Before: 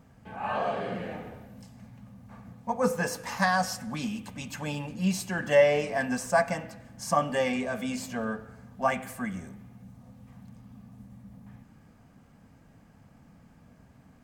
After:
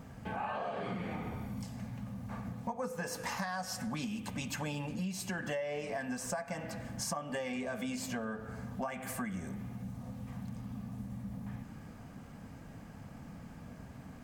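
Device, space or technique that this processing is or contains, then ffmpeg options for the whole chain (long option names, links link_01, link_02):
serial compression, leveller first: -filter_complex "[0:a]asettb=1/sr,asplit=3[link_01][link_02][link_03];[link_01]atrim=end=0.834[link_04];[link_02]atrim=start=0.83:end=1.64,asetpts=PTS-STARTPTS,afade=type=in:duration=0.004:curve=qsin,afade=type=out:start_time=0.806:duration=0.004:curve=qsin,aecho=1:1:0.9:0.53,atrim=end_sample=35721[link_05];[link_03]atrim=start=1.636[link_06];[link_04][link_05]acrossfade=duration=0.004:curve1=hsin:curve2=qsin[link_07];[link_07][link_06]acrossfade=duration=0.004:curve1=qsin:curve2=hsin,acompressor=threshold=-31dB:ratio=2.5,acompressor=threshold=-43dB:ratio=5,volume=7dB"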